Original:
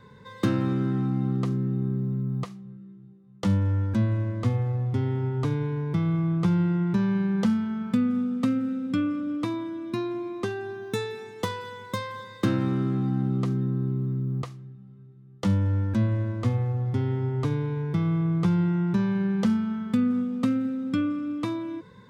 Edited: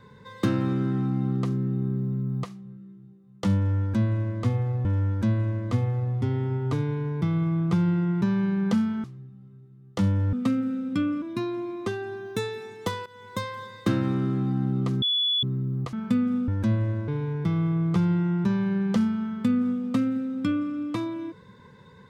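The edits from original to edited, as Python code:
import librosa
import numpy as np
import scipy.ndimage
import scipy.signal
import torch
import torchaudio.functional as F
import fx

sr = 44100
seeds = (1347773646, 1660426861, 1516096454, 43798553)

y = fx.edit(x, sr, fx.repeat(start_s=3.57, length_s=1.28, count=2),
    fx.swap(start_s=7.76, length_s=0.55, other_s=14.5, other_length_s=1.29),
    fx.cut(start_s=9.2, length_s=0.59),
    fx.fade_in_from(start_s=11.63, length_s=0.33, floor_db=-16.5),
    fx.bleep(start_s=13.59, length_s=0.41, hz=3420.0, db=-21.0),
    fx.cut(start_s=16.39, length_s=1.18), tone=tone)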